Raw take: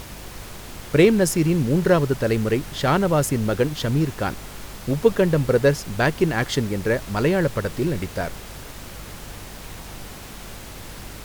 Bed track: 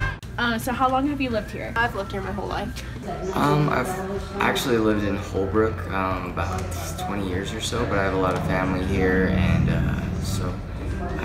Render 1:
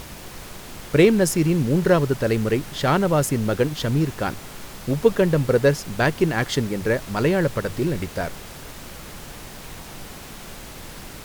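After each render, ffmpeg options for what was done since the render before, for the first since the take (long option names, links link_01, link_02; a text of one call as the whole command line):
ffmpeg -i in.wav -af "bandreject=frequency=50:width_type=h:width=4,bandreject=frequency=100:width_type=h:width=4" out.wav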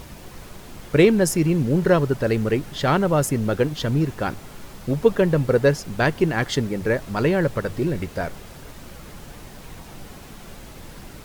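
ffmpeg -i in.wav -af "afftdn=noise_reduction=6:noise_floor=-39" out.wav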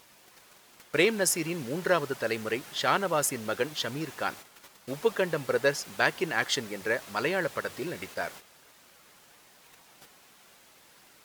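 ffmpeg -i in.wav -af "agate=range=-10dB:threshold=-35dB:ratio=16:detection=peak,highpass=frequency=1200:poles=1" out.wav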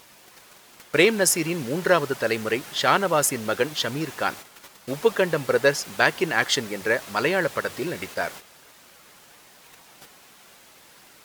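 ffmpeg -i in.wav -af "volume=6dB,alimiter=limit=-2dB:level=0:latency=1" out.wav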